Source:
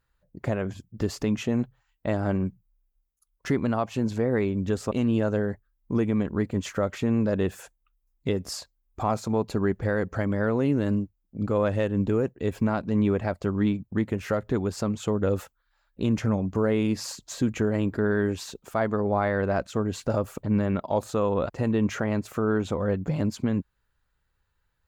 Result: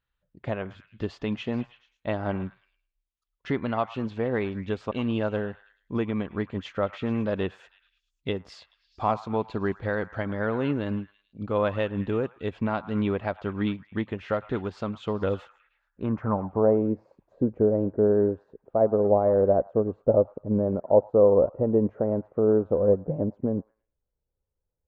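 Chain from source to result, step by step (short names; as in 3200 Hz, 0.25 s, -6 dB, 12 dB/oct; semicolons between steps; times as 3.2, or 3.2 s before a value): dynamic EQ 890 Hz, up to +5 dB, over -38 dBFS, Q 0.86; delay with a stepping band-pass 0.108 s, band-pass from 1100 Hz, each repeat 0.7 oct, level -10 dB; low-pass sweep 3300 Hz -> 530 Hz, 15.43–16.88; upward expander 1.5:1, over -32 dBFS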